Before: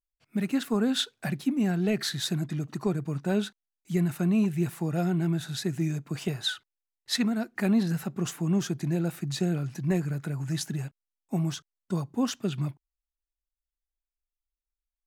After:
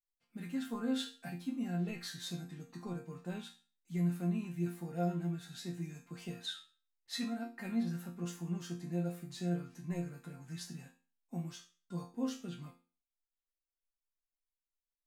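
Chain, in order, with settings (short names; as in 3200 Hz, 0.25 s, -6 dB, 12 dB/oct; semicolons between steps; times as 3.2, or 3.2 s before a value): resonator bank F3 sus4, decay 0.36 s; gain +5 dB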